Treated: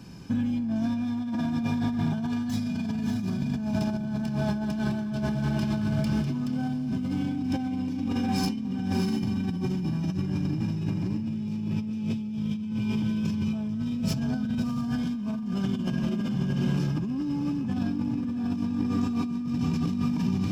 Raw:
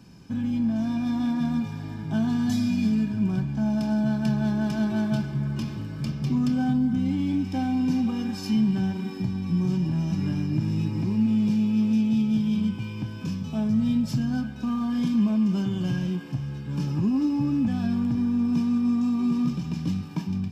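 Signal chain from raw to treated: tracing distortion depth 0.034 ms; echo that smears into a reverb 659 ms, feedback 44%, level -3.5 dB; in parallel at -2 dB: peak limiter -23 dBFS, peak gain reduction 11.5 dB; on the sum: compressor with a negative ratio -24 dBFS, ratio -1; trim -4 dB

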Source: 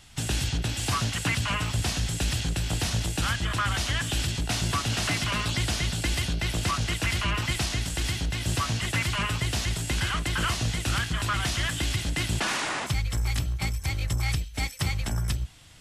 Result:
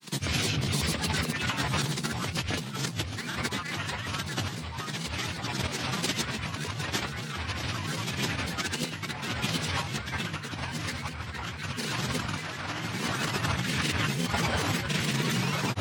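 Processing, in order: high-pass 140 Hz 24 dB/octave; peaking EQ 8.9 kHz -13.5 dB 0.29 oct; echo whose repeats swap between lows and highs 605 ms, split 1.4 kHz, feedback 84%, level -2.5 dB; reverberation RT60 0.90 s, pre-delay 4 ms, DRR 4 dB; compressor with a negative ratio -29 dBFS, ratio -0.5; granulator, pitch spread up and down by 7 st

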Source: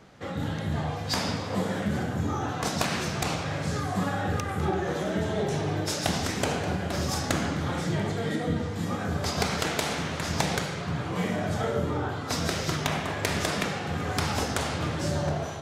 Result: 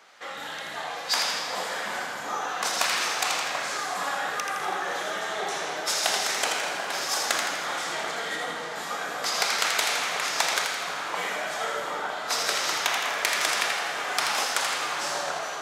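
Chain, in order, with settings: high-pass 890 Hz 12 dB/octave; two-band feedback delay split 1.5 kHz, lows 737 ms, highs 82 ms, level -5 dB; on a send at -9.5 dB: reverberation RT60 2.8 s, pre-delay 29 ms; on the sum: trim +4.5 dB

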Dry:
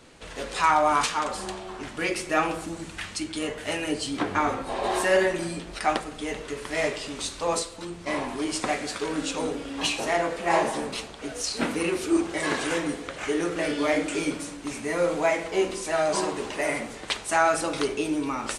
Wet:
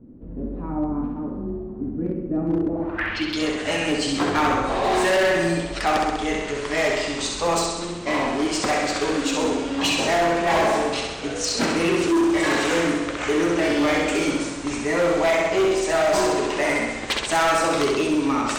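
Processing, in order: low-pass sweep 250 Hz -> 8.1 kHz, 2.48–3.45 s; distance through air 100 m; on a send: flutter echo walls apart 11.2 m, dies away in 1 s; on the sum: overload inside the chain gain 21.5 dB; trim +5.5 dB

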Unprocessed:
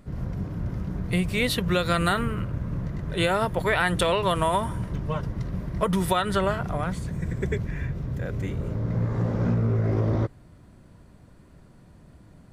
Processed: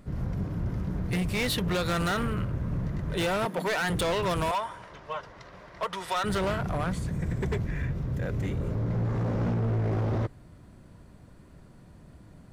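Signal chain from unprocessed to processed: 3.45–3.90 s: steep high-pass 160 Hz 72 dB/octave; 4.51–6.24 s: three-band isolator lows -24 dB, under 520 Hz, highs -17 dB, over 6.8 kHz; hard clipper -24.5 dBFS, distortion -9 dB

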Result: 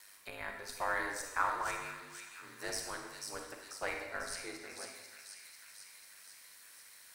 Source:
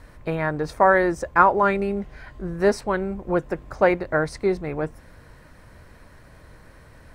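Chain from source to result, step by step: differentiator; de-hum 100.3 Hz, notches 17; ring modulator 50 Hz; in parallel at -10.5 dB: Schmitt trigger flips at -33.5 dBFS; on the sum: feedback echo behind a high-pass 493 ms, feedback 56%, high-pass 3 kHz, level -4 dB; on a send at -3 dB: reverberation RT60 1.1 s, pre-delay 33 ms; on the sum: tape noise reduction on one side only encoder only; trim +1 dB

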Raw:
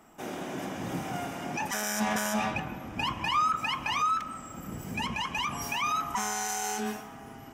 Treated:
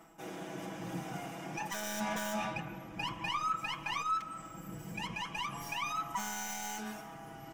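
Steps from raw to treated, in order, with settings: tracing distortion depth 0.064 ms; comb 6.1 ms, depth 77%; reverse; upward compressor, threshold -33 dBFS; reverse; trim -8.5 dB

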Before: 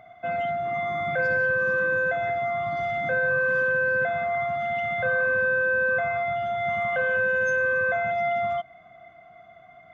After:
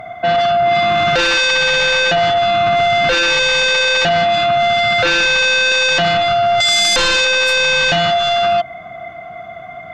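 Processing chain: 5.03–5.72 s: elliptic low-pass 2.8 kHz; 6.60–7.25 s: peaking EQ 2 kHz +10.5 dB 0.22 oct; sine folder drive 11 dB, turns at -14 dBFS; trim +3.5 dB

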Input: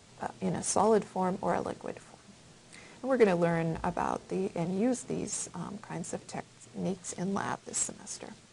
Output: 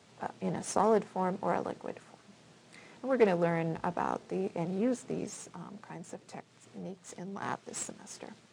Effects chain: partial rectifier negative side -3 dB; high-pass 130 Hz 12 dB/octave; treble shelf 6.7 kHz -10 dB; 5.30–7.42 s: compression 2:1, threshold -44 dBFS, peak gain reduction 9 dB; loudspeaker Doppler distortion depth 0.11 ms

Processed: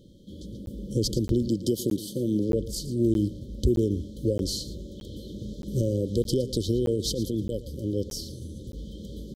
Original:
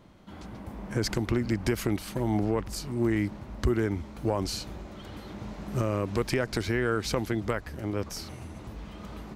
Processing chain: 1.48–2.50 s: high-pass 140 Hz 12 dB/octave; 6.96–7.57 s: compressor with a negative ratio -30 dBFS, ratio -1; brick-wall FIR band-stop 590–3000 Hz; delay 113 ms -15.5 dB; crackling interface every 0.62 s, samples 512, zero, from 0.66 s; trim +3 dB

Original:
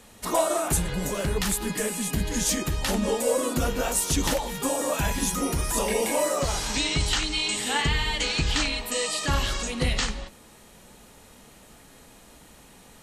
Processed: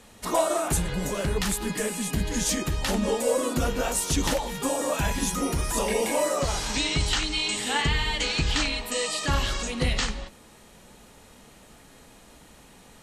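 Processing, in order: treble shelf 12 kHz -7.5 dB

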